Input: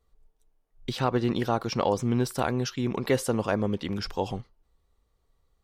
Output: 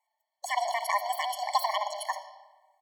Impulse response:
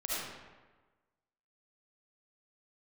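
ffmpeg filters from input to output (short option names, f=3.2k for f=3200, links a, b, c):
-filter_complex "[0:a]asetrate=88200,aresample=44100,asplit=2[a][b];[b]firequalizer=gain_entry='entry(460,0);entry(1400,-17);entry(4400,10);entry(7000,-13)':delay=0.05:min_phase=1[c];[1:a]atrim=start_sample=2205[d];[c][d]afir=irnorm=-1:irlink=0,volume=-8dB[e];[a][e]amix=inputs=2:normalize=0,afftfilt=real='re*eq(mod(floor(b*sr/1024/580),2),1)':imag='im*eq(mod(floor(b*sr/1024/580),2),1)':win_size=1024:overlap=0.75"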